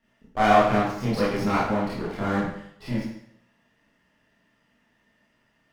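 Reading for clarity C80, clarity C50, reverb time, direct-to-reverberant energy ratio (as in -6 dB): 5.0 dB, 0.5 dB, 0.70 s, -9.5 dB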